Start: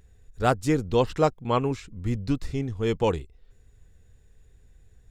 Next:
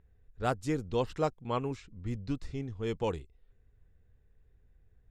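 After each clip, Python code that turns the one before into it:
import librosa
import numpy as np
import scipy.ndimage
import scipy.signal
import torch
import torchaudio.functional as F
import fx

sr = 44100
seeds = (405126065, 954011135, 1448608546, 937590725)

y = fx.env_lowpass(x, sr, base_hz=2100.0, full_db=-20.5)
y = F.gain(torch.from_numpy(y), -8.5).numpy()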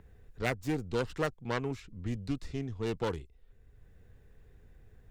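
y = fx.self_delay(x, sr, depth_ms=0.33)
y = fx.band_squash(y, sr, depth_pct=40)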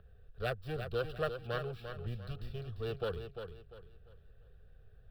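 y = scipy.signal.medfilt(x, 5)
y = fx.fixed_phaser(y, sr, hz=1400.0, stages=8)
y = fx.echo_feedback(y, sr, ms=347, feedback_pct=31, wet_db=-8.0)
y = F.gain(torch.from_numpy(y), -1.0).numpy()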